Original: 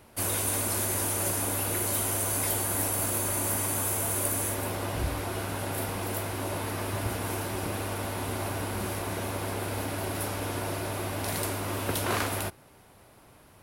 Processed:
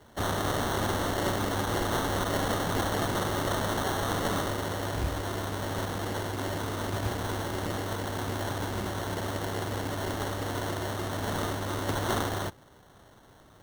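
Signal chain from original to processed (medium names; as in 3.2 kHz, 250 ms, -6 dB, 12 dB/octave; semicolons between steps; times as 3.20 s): sample-and-hold 18×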